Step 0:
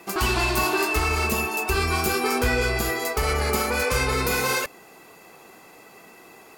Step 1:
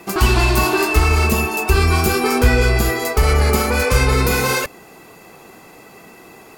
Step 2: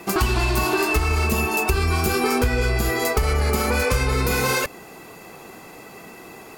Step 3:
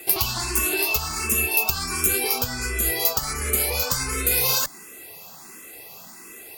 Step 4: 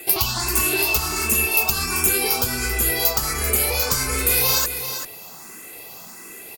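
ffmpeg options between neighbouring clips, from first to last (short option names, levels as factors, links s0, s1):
-af "lowshelf=f=240:g=8.5,volume=1.68"
-af "acompressor=threshold=0.126:ratio=6,volume=1.12"
-filter_complex "[0:a]crystalizer=i=5:c=0,asplit=2[s0][s1];[s1]afreqshift=1.4[s2];[s0][s2]amix=inputs=2:normalize=1,volume=0.501"
-filter_complex "[0:a]asplit=2[s0][s1];[s1]asoftclip=type=tanh:threshold=0.178,volume=0.562[s2];[s0][s2]amix=inputs=2:normalize=0,aecho=1:1:390:0.335,volume=0.891"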